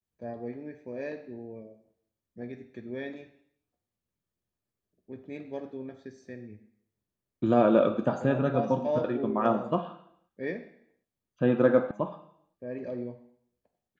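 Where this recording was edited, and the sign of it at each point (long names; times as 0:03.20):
0:11.91: cut off before it has died away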